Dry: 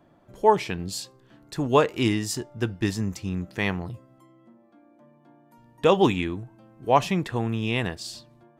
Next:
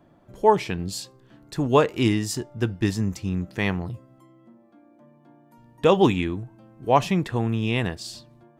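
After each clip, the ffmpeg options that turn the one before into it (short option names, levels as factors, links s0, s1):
-af "lowshelf=f=350:g=3.5"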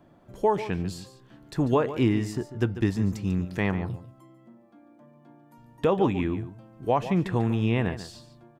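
-filter_complex "[0:a]acrossover=split=2200[s0][s1];[s1]acompressor=threshold=0.00631:ratio=6[s2];[s0][s2]amix=inputs=2:normalize=0,alimiter=limit=0.237:level=0:latency=1:release=260,aecho=1:1:144:0.224"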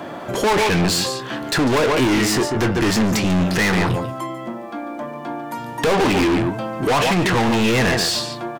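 -filter_complex "[0:a]asplit=2[s0][s1];[s1]highpass=f=720:p=1,volume=50.1,asoftclip=type=tanh:threshold=0.282[s2];[s0][s2]amix=inputs=2:normalize=0,lowpass=f=6200:p=1,volume=0.501,asoftclip=type=tanh:threshold=0.119,asplit=2[s3][s4];[s4]adelay=23,volume=0.251[s5];[s3][s5]amix=inputs=2:normalize=0,volume=1.58"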